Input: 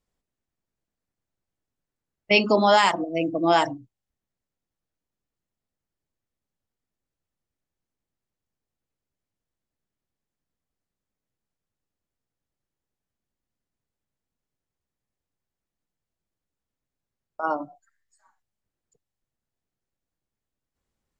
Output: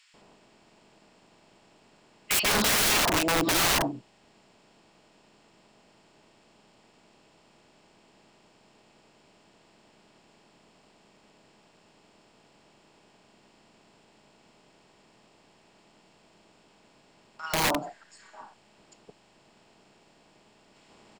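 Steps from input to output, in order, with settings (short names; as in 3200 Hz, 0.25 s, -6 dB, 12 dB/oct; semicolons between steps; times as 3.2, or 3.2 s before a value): per-bin compression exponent 0.6; bands offset in time highs, lows 0.14 s, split 1600 Hz; wrapped overs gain 18.5 dB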